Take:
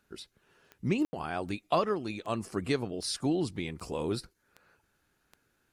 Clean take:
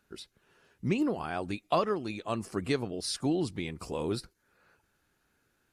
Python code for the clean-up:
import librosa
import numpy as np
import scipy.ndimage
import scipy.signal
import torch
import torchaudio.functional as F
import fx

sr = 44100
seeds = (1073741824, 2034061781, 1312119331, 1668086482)

y = fx.fix_declick_ar(x, sr, threshold=10.0)
y = fx.fix_ambience(y, sr, seeds[0], print_start_s=4.81, print_end_s=5.31, start_s=1.05, end_s=1.13)